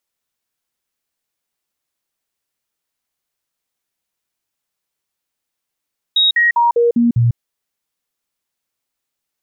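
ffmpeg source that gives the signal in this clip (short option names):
-f lavfi -i "aevalsrc='0.335*clip(min(mod(t,0.2),0.15-mod(t,0.2))/0.005,0,1)*sin(2*PI*3780*pow(2,-floor(t/0.2)/1)*mod(t,0.2))':d=1.2:s=44100"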